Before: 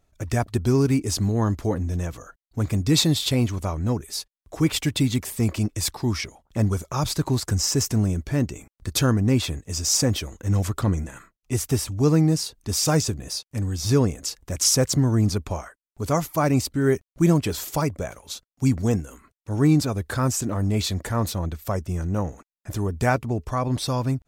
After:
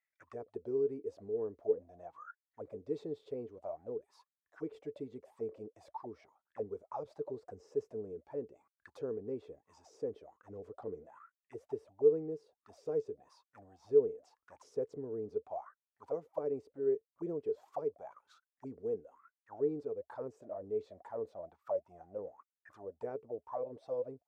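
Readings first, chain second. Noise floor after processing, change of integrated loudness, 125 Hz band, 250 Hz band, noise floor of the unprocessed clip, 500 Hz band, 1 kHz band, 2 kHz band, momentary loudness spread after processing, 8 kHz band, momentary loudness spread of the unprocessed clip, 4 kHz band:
under -85 dBFS, -15.5 dB, -34.0 dB, -23.0 dB, under -85 dBFS, -7.0 dB, -18.0 dB, under -25 dB, 16 LU, under -40 dB, 11 LU, under -40 dB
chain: auto-wah 440–2000 Hz, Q 17, down, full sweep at -19.5 dBFS; gain +1 dB

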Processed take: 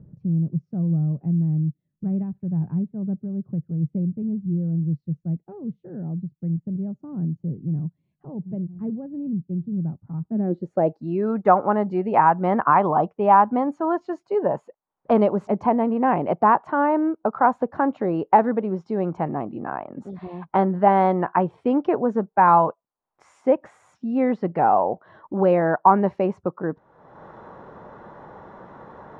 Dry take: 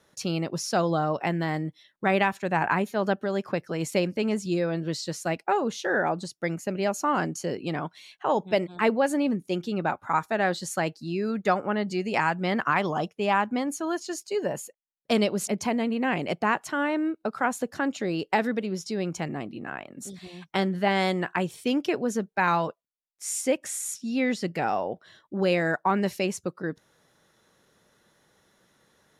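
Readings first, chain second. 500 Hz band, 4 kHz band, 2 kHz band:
+4.0 dB, under -15 dB, -5.0 dB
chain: upward compressor, threshold -32 dBFS; low-pass sweep 150 Hz -> 960 Hz, 10.19–11.06; gain +4 dB

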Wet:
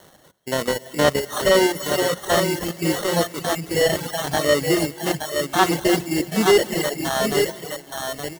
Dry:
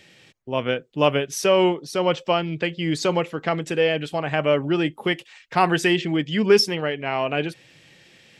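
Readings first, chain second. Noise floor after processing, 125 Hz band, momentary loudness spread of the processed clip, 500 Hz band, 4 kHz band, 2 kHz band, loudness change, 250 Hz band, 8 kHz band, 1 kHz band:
-50 dBFS, -0.5 dB, 9 LU, +1.5 dB, +2.0 dB, +1.5 dB, +1.5 dB, +1.0 dB, +8.5 dB, +1.0 dB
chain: stepped spectrum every 50 ms; sample-and-hold 18×; low shelf 74 Hz -10 dB; notches 60/120/180 Hz; tapped delay 0.329/0.763/0.87 s -13/-19.5/-6.5 dB; non-linear reverb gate 0.33 s rising, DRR 11.5 dB; reverb removal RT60 1.6 s; high shelf 4200 Hz +9.5 dB; slew limiter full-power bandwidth 560 Hz; gain +3.5 dB

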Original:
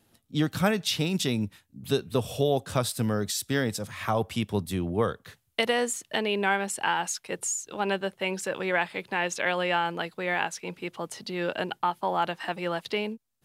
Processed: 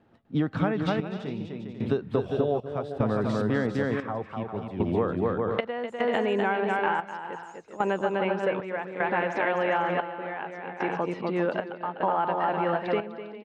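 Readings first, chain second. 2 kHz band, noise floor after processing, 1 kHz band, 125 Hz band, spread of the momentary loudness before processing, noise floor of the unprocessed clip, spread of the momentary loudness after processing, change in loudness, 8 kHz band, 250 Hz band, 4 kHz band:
-2.0 dB, -46 dBFS, +1.5 dB, -0.5 dB, 7 LU, -71 dBFS, 9 LU, +0.5 dB, under -25 dB, +1.5 dB, -10.5 dB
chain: low shelf 100 Hz -9 dB; on a send: bouncing-ball echo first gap 0.25 s, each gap 0.6×, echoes 5; on the sum: step gate "xxxxx....xxxx.." 75 bpm -12 dB; LPF 1500 Hz 12 dB/oct; compressor, threshold -28 dBFS, peak gain reduction 10 dB; gain +6.5 dB

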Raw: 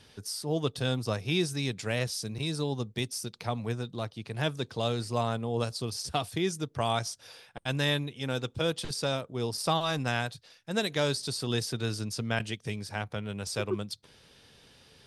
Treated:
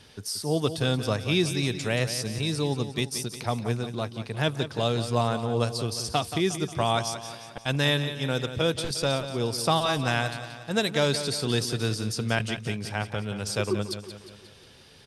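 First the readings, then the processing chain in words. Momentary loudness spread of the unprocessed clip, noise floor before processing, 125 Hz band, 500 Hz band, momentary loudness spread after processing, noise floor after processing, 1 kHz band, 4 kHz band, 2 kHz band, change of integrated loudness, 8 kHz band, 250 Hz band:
7 LU, -60 dBFS, +4.5 dB, +4.5 dB, 8 LU, -51 dBFS, +4.5 dB, +4.5 dB, +4.5 dB, +4.5 dB, +4.5 dB, +4.5 dB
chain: feedback echo 0.178 s, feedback 52%, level -11 dB; gain +4 dB

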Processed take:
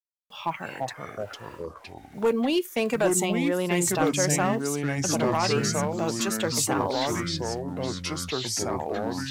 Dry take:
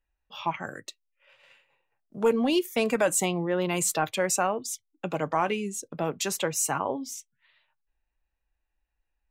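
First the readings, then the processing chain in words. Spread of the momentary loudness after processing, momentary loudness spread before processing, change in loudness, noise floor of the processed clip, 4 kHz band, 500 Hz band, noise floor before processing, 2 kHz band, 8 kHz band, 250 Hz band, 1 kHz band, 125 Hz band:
13 LU, 14 LU, +1.5 dB, -48 dBFS, +5.5 dB, +2.0 dB, -82 dBFS, +2.5 dB, +2.0 dB, +4.5 dB, +1.5 dB, +7.5 dB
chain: requantised 10-bit, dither none; overloaded stage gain 16.5 dB; echoes that change speed 0.223 s, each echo -4 st, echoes 3

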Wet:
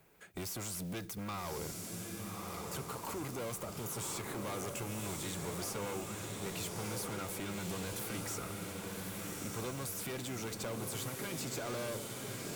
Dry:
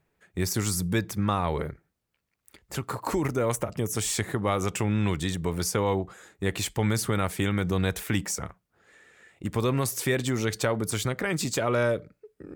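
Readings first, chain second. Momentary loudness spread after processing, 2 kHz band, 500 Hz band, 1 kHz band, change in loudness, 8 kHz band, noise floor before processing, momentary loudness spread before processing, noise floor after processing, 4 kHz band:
3 LU, -12.0 dB, -13.0 dB, -11.0 dB, -12.0 dB, -8.0 dB, -79 dBFS, 7 LU, -45 dBFS, -9.0 dB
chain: high shelf 11000 Hz +9.5 dB; tube stage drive 30 dB, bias 0.35; notch 1800 Hz, Q 10; modulation noise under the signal 23 dB; limiter -31.5 dBFS, peak gain reduction 5.5 dB; low shelf 130 Hz -8 dB; diffused feedback echo 1.185 s, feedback 56%, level -3.5 dB; three-band squash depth 40%; gain -3 dB

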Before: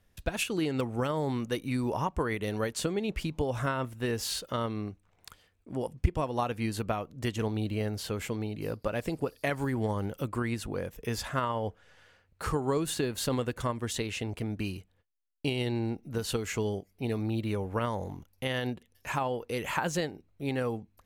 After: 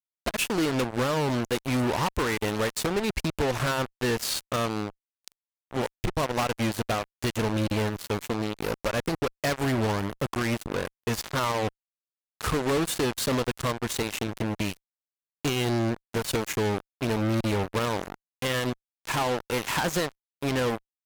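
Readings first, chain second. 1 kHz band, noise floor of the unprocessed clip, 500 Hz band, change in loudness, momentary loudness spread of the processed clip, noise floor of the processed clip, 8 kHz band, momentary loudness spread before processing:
+5.0 dB, -69 dBFS, +4.0 dB, +4.5 dB, 6 LU, under -85 dBFS, +6.0 dB, 6 LU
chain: added harmonics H 3 -7 dB, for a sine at -11.5 dBFS; fuzz box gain 48 dB, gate -43 dBFS; gain -7.5 dB

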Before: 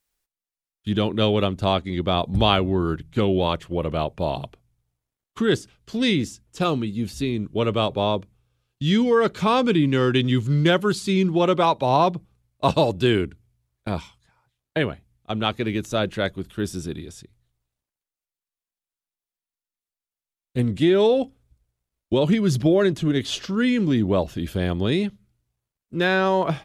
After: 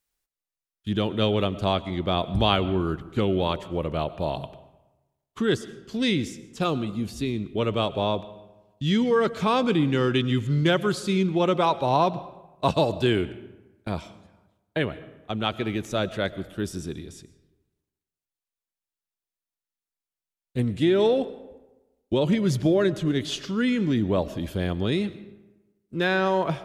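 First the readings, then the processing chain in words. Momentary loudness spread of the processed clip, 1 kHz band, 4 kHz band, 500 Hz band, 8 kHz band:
13 LU, -3.0 dB, -3.0 dB, -3.0 dB, -3.0 dB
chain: digital reverb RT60 1.1 s, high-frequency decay 0.6×, pre-delay 70 ms, DRR 16 dB; gain -3 dB

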